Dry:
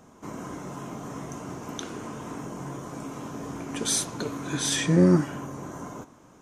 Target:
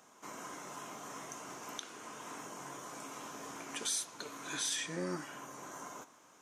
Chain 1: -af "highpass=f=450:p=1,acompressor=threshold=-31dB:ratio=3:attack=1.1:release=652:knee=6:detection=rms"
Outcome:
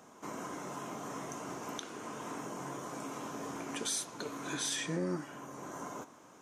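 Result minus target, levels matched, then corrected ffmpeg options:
500 Hz band +3.5 dB
-af "highpass=f=1.5k:p=1,acompressor=threshold=-31dB:ratio=3:attack=1.1:release=652:knee=6:detection=rms"

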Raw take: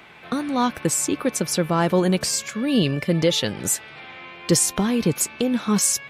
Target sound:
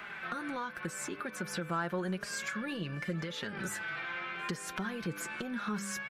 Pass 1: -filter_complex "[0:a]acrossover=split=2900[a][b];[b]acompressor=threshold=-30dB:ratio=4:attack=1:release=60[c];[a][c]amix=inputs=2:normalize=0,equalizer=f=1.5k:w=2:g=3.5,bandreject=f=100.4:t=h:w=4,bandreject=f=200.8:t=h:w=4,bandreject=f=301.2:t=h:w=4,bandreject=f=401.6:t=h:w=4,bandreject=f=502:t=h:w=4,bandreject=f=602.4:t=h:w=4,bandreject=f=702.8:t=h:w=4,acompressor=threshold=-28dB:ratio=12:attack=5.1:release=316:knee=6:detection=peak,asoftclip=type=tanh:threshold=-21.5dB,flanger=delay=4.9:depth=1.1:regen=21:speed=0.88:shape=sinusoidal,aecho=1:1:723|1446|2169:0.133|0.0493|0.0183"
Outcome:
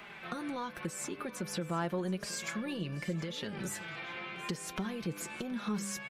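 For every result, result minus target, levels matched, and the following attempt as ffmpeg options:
echo-to-direct +8.5 dB; 2000 Hz band -4.5 dB
-filter_complex "[0:a]acrossover=split=2900[a][b];[b]acompressor=threshold=-30dB:ratio=4:attack=1:release=60[c];[a][c]amix=inputs=2:normalize=0,equalizer=f=1.5k:w=2:g=3.5,bandreject=f=100.4:t=h:w=4,bandreject=f=200.8:t=h:w=4,bandreject=f=301.2:t=h:w=4,bandreject=f=401.6:t=h:w=4,bandreject=f=502:t=h:w=4,bandreject=f=602.4:t=h:w=4,bandreject=f=702.8:t=h:w=4,acompressor=threshold=-28dB:ratio=12:attack=5.1:release=316:knee=6:detection=peak,asoftclip=type=tanh:threshold=-21.5dB,flanger=delay=4.9:depth=1.1:regen=21:speed=0.88:shape=sinusoidal,aecho=1:1:723|1446:0.0501|0.0185"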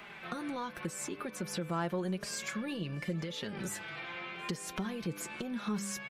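2000 Hz band -4.5 dB
-filter_complex "[0:a]acrossover=split=2900[a][b];[b]acompressor=threshold=-30dB:ratio=4:attack=1:release=60[c];[a][c]amix=inputs=2:normalize=0,equalizer=f=1.5k:w=2:g=14,bandreject=f=100.4:t=h:w=4,bandreject=f=200.8:t=h:w=4,bandreject=f=301.2:t=h:w=4,bandreject=f=401.6:t=h:w=4,bandreject=f=502:t=h:w=4,bandreject=f=602.4:t=h:w=4,bandreject=f=702.8:t=h:w=4,acompressor=threshold=-28dB:ratio=12:attack=5.1:release=316:knee=6:detection=peak,asoftclip=type=tanh:threshold=-21.5dB,flanger=delay=4.9:depth=1.1:regen=21:speed=0.88:shape=sinusoidal,aecho=1:1:723|1446:0.0501|0.0185"

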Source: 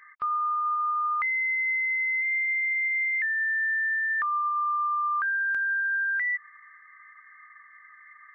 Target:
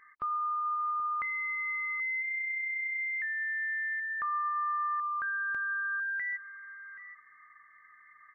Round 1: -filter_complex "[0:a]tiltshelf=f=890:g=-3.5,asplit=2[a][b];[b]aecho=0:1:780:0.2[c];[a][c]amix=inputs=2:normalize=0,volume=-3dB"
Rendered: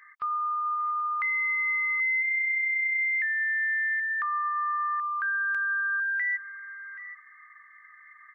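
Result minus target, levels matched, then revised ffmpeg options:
1000 Hz band -2.5 dB
-filter_complex "[0:a]tiltshelf=f=890:g=7,asplit=2[a][b];[b]aecho=0:1:780:0.2[c];[a][c]amix=inputs=2:normalize=0,volume=-3dB"

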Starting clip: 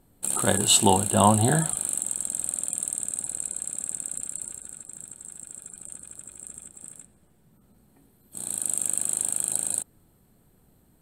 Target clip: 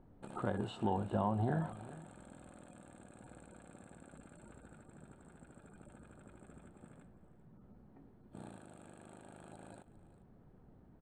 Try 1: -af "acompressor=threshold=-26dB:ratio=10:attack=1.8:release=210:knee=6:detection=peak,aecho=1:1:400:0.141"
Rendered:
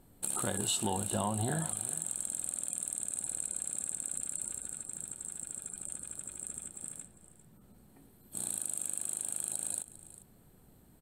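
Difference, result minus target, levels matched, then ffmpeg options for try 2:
1000 Hz band -3.0 dB
-af "acompressor=threshold=-26dB:ratio=10:attack=1.8:release=210:knee=6:detection=peak,lowpass=1.4k,aecho=1:1:400:0.141"

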